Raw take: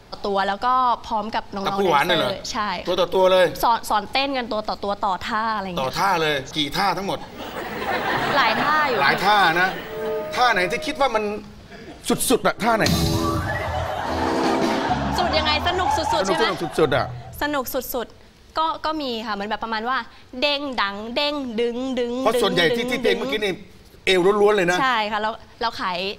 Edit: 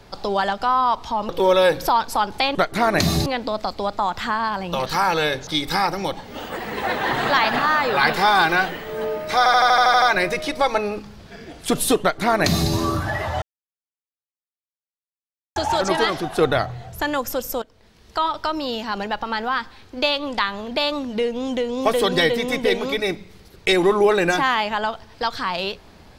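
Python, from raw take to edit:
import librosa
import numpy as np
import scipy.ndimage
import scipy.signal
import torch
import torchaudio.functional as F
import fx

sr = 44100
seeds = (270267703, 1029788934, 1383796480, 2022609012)

y = fx.edit(x, sr, fx.cut(start_s=1.29, length_s=1.75),
    fx.stutter(start_s=10.42, slice_s=0.08, count=9),
    fx.duplicate(start_s=12.41, length_s=0.71, to_s=4.3),
    fx.silence(start_s=13.82, length_s=2.14),
    fx.fade_in_from(start_s=18.02, length_s=0.56, floor_db=-16.5), tone=tone)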